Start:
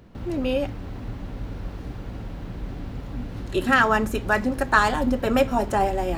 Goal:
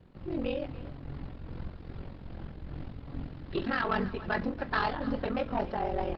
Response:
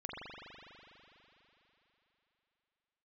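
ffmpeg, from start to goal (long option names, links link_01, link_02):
-filter_complex "[0:a]asettb=1/sr,asplit=3[link_01][link_02][link_03];[link_01]atrim=end=2.524[link_04];[link_02]atrim=start=2.52:end=3.61,asetpts=PTS-STARTPTS,afade=type=in:duration=0.004:curve=qsin,afade=type=out:start_time=1.086:duration=0.004:curve=qsin,acompressor=mode=upward:threshold=-44dB:ratio=2.5[link_05];[link_03]atrim=start=3.606[link_06];[link_04][link_05]acrossfade=duration=0.004:curve1=hsin:curve2=qsin[link_07];[link_07][link_06]acrossfade=duration=0.004:curve1=qsin:curve2=hsin,asettb=1/sr,asplit=3[link_08][link_09][link_10];[link_08]atrim=end=5.144[link_11];[link_09]atrim=start=5.14:end=5.61,asetpts=PTS-STARTPTS,afade=type=in:duration=0.004:curve=qsin,afade=type=out:start_time=0.466:duration=0.004:curve=qsin,bandreject=frequency=400:width=12[link_12];[link_10]atrim=start=5.606[link_13];[link_11][link_12]acrossfade=duration=0.004:curve1=hsin:curve2=qsin[link_14];[link_14][link_13]acrossfade=duration=0.004:curve1=qsin:curve2=hsin,aeval=exprs='val(0)*sin(2*PI*22*n/s)':channel_layout=same,asettb=1/sr,asplit=3[link_15][link_16][link_17];[link_15]atrim=end=0.754[link_18];[link_16]atrim=start=0.75:end=1.46,asetpts=PTS-STARTPTS,afade=type=in:duration=0.004:curve=qsin,afade=type=out:start_time=0.706:duration=0.004:curve=qsin,aeval=exprs='val(0)+0.00251*(sin(2*PI*50*n/s)+sin(2*PI*2*50*n/s)/2+sin(2*PI*3*50*n/s)/3+sin(2*PI*4*50*n/s)/4+sin(2*PI*5*50*n/s)/5)':channel_layout=same[link_19];[link_17]atrim=start=1.456[link_20];[link_18][link_19]acrossfade=duration=0.004:curve1=hsin:curve2=qsin[link_21];[link_21][link_20]acrossfade=duration=0.004:curve1=qsin:curve2=hsin,tremolo=f=2.5:d=0.42,asoftclip=type=tanh:threshold=-20dB,flanger=delay=5.3:depth=1.8:regen=78:speed=0.5:shape=sinusoidal,asplit=2[link_22][link_23];[link_23]aecho=0:1:284|568:0.15|0.0254[link_24];[link_22][link_24]amix=inputs=2:normalize=0,aresample=11025,aresample=44100,volume=2.5dB" -ar 48000 -c:a libopus -b:a 16k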